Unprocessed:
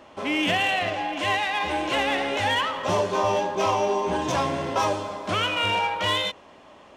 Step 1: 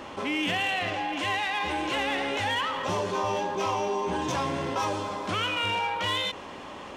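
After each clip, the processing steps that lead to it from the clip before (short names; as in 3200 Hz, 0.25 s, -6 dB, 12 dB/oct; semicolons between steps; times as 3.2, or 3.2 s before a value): bell 640 Hz -7.5 dB 0.24 oct; fast leveller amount 50%; gain -5 dB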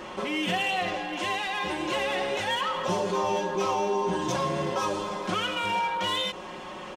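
comb 5.5 ms, depth 70%; dynamic EQ 2200 Hz, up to -4 dB, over -38 dBFS, Q 1.1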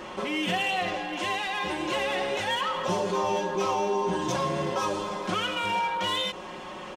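nothing audible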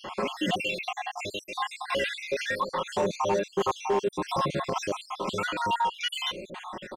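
random spectral dropouts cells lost 64%; hard clip -22.5 dBFS, distortion -22 dB; gain +3.5 dB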